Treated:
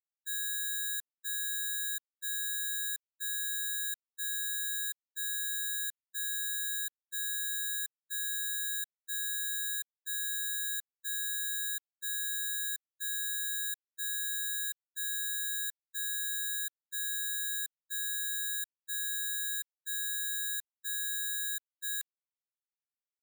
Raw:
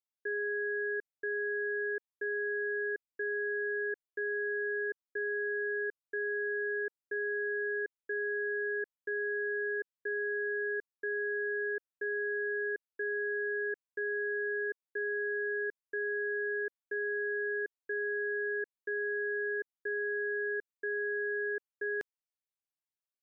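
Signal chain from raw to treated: steep high-pass 1200 Hz 36 dB/oct; gate -38 dBFS, range -39 dB; careless resampling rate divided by 8×, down none, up zero stuff; gain -5 dB

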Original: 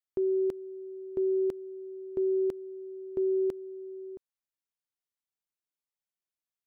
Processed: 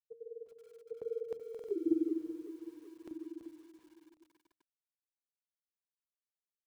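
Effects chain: Doppler pass-by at 1.67, 60 m/s, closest 3.5 m; HPF 46 Hz 12 dB/oct; reverb, pre-delay 7 ms, DRR 13.5 dB; grains 41 ms, grains 20/s, pitch spread up and down by 0 st; de-hum 77.2 Hz, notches 6; stuck buffer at 1.5/2.89, samples 2048, times 3; lo-fi delay 0.38 s, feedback 55%, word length 12-bit, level -12.5 dB; gain +14.5 dB

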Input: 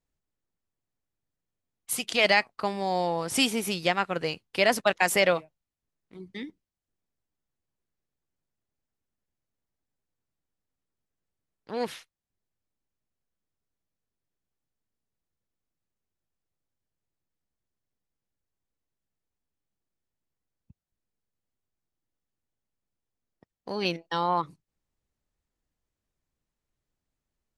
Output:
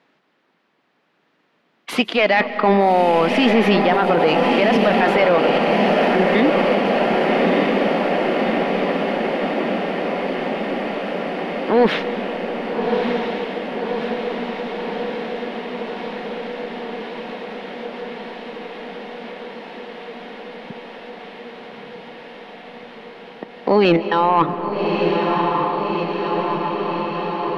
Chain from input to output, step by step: HPF 200 Hz 24 dB/oct; high shelf 6100 Hz -7.5 dB; reverse; compressor 12:1, threshold -32 dBFS, peak gain reduction 16 dB; reverse; soft clip -30.5 dBFS, distortion -14 dB; air absorption 340 m; diffused feedback echo 1.223 s, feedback 75%, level -4 dB; on a send at -12 dB: reverb RT60 4.2 s, pre-delay 0.115 s; on the sum: maximiser +33 dB; mismatched tape noise reduction encoder only; gain -6 dB

